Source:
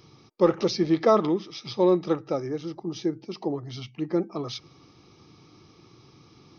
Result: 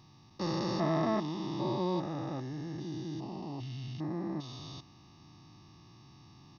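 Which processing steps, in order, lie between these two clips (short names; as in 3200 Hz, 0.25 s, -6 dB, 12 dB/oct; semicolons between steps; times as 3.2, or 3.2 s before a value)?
stepped spectrum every 0.4 s; comb 1.1 ms, depth 76%; gain -3 dB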